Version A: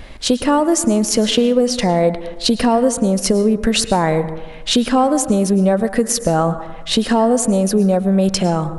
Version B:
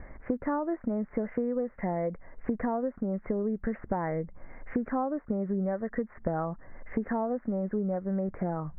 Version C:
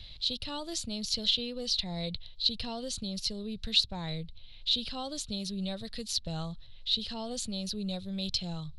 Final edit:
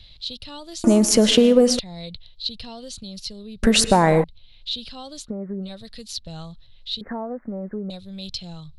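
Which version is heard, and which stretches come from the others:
C
0:00.84–0:01.79: punch in from A
0:03.63–0:04.24: punch in from A
0:05.26–0:05.66: punch in from B, crossfade 0.10 s
0:07.01–0:07.90: punch in from B

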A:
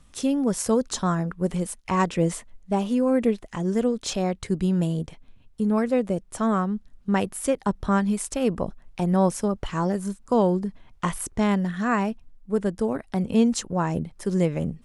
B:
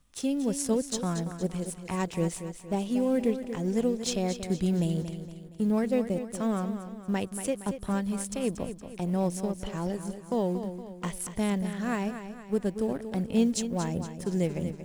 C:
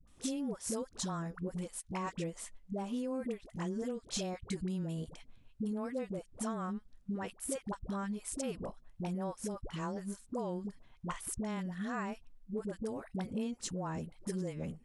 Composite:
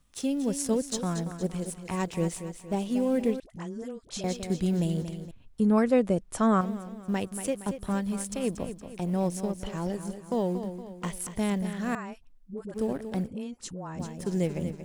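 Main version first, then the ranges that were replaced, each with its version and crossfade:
B
0:03.40–0:04.24: punch in from C
0:05.31–0:06.61: punch in from A
0:11.95–0:12.74: punch in from C
0:13.28–0:13.99: punch in from C

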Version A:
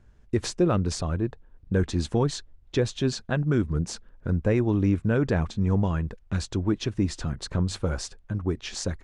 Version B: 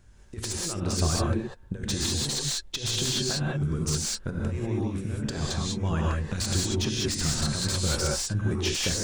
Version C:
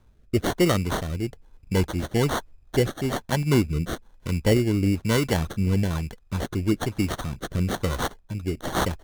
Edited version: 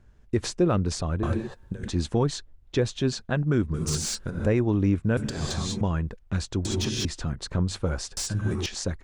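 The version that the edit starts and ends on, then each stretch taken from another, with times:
A
0:01.23–0:01.88: punch in from B
0:03.74–0:04.46: punch in from B
0:05.17–0:05.81: punch in from B
0:06.65–0:07.05: punch in from B
0:08.17–0:08.66: punch in from B
not used: C

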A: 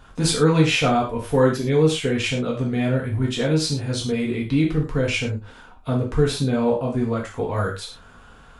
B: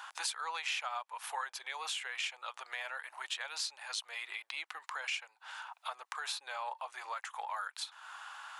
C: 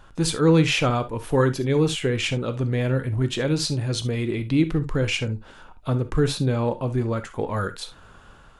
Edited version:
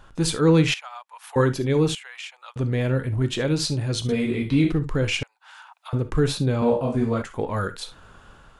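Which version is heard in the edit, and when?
C
0:00.74–0:01.36: punch in from B
0:01.95–0:02.56: punch in from B
0:04.09–0:04.72: punch in from A
0:05.23–0:05.93: punch in from B
0:06.62–0:07.22: punch in from A

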